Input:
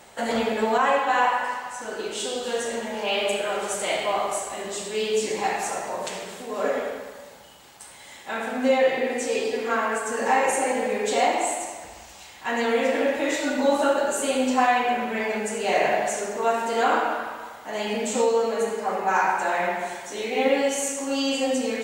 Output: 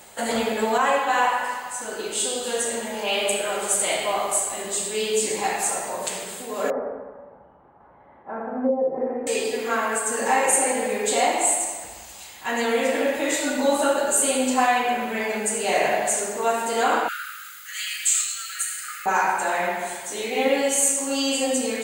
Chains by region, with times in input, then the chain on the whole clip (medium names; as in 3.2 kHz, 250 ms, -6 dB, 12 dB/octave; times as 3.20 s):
6.70–9.27 s: low-pass that closes with the level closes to 510 Hz, closed at -16 dBFS + low-pass 1.2 kHz 24 dB/octave
17.08–19.06 s: brick-wall FIR high-pass 1.2 kHz + tilt EQ +1.5 dB/octave + bit-crushed delay 108 ms, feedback 55%, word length 8-bit, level -10 dB
whole clip: treble shelf 6.6 kHz +11.5 dB; band-stop 5.6 kHz, Q 10; dynamic bell 8.6 kHz, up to +5 dB, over -47 dBFS, Q 4